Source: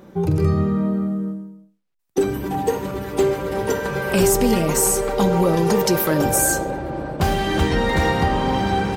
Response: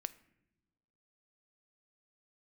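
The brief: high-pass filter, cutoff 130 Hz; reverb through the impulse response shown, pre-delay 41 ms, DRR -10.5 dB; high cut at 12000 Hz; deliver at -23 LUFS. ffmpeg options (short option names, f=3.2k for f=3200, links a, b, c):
-filter_complex "[0:a]highpass=130,lowpass=12k,asplit=2[a][b];[1:a]atrim=start_sample=2205,adelay=41[c];[b][c]afir=irnorm=-1:irlink=0,volume=13dB[d];[a][d]amix=inputs=2:normalize=0,volume=-14dB"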